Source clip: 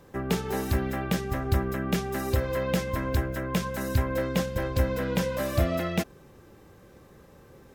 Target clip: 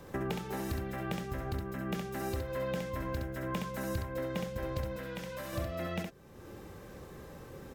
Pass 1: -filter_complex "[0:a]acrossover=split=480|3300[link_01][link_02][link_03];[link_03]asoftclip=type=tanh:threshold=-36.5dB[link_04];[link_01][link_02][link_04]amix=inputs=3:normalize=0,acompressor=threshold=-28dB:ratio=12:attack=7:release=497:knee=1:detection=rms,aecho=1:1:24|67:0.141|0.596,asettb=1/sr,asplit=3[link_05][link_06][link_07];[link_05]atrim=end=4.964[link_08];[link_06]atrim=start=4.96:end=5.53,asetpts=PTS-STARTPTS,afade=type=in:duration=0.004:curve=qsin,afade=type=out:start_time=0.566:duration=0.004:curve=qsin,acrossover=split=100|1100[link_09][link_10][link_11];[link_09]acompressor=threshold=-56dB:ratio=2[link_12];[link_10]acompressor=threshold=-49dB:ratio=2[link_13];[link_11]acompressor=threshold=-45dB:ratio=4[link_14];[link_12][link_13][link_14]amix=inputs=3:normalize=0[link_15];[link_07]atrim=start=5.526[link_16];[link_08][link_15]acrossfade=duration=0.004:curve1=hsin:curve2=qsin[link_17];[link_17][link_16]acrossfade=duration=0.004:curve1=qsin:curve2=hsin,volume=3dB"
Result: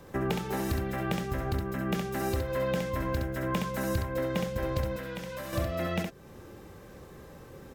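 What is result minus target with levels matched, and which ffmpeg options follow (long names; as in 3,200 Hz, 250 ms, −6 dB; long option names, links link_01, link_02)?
downward compressor: peak gain reduction −5.5 dB
-filter_complex "[0:a]acrossover=split=480|3300[link_01][link_02][link_03];[link_03]asoftclip=type=tanh:threshold=-36.5dB[link_04];[link_01][link_02][link_04]amix=inputs=3:normalize=0,acompressor=threshold=-34dB:ratio=12:attack=7:release=497:knee=1:detection=rms,aecho=1:1:24|67:0.141|0.596,asettb=1/sr,asplit=3[link_05][link_06][link_07];[link_05]atrim=end=4.964[link_08];[link_06]atrim=start=4.96:end=5.53,asetpts=PTS-STARTPTS,afade=type=in:duration=0.004:curve=qsin,afade=type=out:start_time=0.566:duration=0.004:curve=qsin,acrossover=split=100|1100[link_09][link_10][link_11];[link_09]acompressor=threshold=-56dB:ratio=2[link_12];[link_10]acompressor=threshold=-49dB:ratio=2[link_13];[link_11]acompressor=threshold=-45dB:ratio=4[link_14];[link_12][link_13][link_14]amix=inputs=3:normalize=0[link_15];[link_07]atrim=start=5.526[link_16];[link_08][link_15]acrossfade=duration=0.004:curve1=hsin:curve2=qsin[link_17];[link_17][link_16]acrossfade=duration=0.004:curve1=qsin:curve2=hsin,volume=3dB"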